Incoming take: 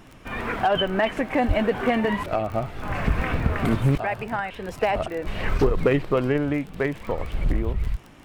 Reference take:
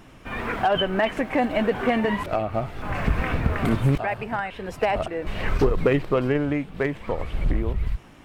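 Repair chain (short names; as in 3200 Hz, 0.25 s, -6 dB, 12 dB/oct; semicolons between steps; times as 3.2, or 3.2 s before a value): de-click; 1.47–1.59 HPF 140 Hz 24 dB/oct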